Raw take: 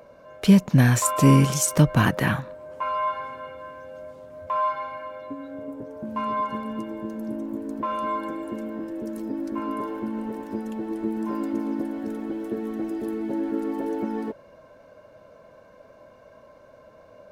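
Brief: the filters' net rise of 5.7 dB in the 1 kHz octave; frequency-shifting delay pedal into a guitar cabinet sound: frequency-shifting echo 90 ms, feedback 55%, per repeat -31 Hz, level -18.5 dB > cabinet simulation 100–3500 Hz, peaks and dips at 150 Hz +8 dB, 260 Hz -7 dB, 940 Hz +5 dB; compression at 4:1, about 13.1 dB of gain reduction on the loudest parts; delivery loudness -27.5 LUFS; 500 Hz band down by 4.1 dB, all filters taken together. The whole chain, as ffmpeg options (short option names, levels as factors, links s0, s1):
-filter_complex "[0:a]equalizer=f=500:t=o:g=-6.5,equalizer=f=1000:t=o:g=4,acompressor=threshold=0.0398:ratio=4,asplit=6[s0][s1][s2][s3][s4][s5];[s1]adelay=90,afreqshift=-31,volume=0.119[s6];[s2]adelay=180,afreqshift=-62,volume=0.0653[s7];[s3]adelay=270,afreqshift=-93,volume=0.0359[s8];[s4]adelay=360,afreqshift=-124,volume=0.0197[s9];[s5]adelay=450,afreqshift=-155,volume=0.0108[s10];[s0][s6][s7][s8][s9][s10]amix=inputs=6:normalize=0,highpass=100,equalizer=f=150:t=q:w=4:g=8,equalizer=f=260:t=q:w=4:g=-7,equalizer=f=940:t=q:w=4:g=5,lowpass=f=3500:w=0.5412,lowpass=f=3500:w=1.3066,volume=1.58"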